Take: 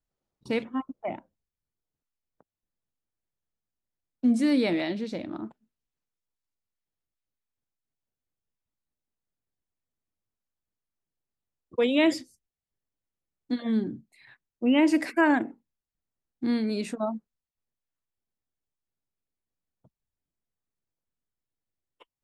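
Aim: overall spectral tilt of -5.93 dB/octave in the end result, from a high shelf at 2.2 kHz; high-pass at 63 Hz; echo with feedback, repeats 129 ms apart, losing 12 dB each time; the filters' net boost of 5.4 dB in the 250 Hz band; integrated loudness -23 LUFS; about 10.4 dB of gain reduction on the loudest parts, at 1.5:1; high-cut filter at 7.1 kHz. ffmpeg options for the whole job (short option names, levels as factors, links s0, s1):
-af "highpass=63,lowpass=7100,equalizer=f=250:t=o:g=6.5,highshelf=f=2200:g=-7,acompressor=threshold=0.00708:ratio=1.5,aecho=1:1:129|258|387:0.251|0.0628|0.0157,volume=2.82"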